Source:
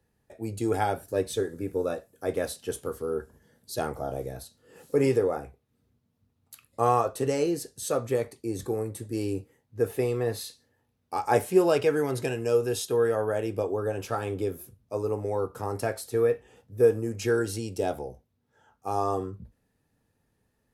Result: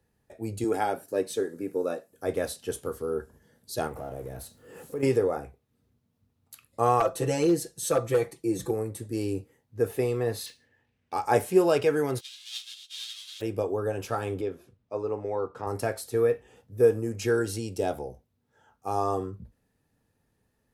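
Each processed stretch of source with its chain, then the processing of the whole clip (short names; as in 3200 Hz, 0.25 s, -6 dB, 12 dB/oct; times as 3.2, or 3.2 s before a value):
0.64–2.12 Chebyshev high-pass 220 Hz + notch 3500 Hz, Q 18
3.87–5.03 G.711 law mismatch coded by mu + bell 4500 Hz -6.5 dB 1.3 oct + compressor 2:1, threshold -37 dBFS
7–8.71 notch 4700 Hz, Q 16 + comb 6 ms, depth 88% + overloaded stage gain 16.5 dB
10.46–11.14 band shelf 2200 Hz +9 dB 1.1 oct + decimation joined by straight lines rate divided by 3×
12.18–13.4 spectral whitening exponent 0.1 + ladder band-pass 3800 Hz, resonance 65% + ensemble effect
14.41–15.67 LPF 3800 Hz + low shelf 180 Hz -9.5 dB
whole clip: dry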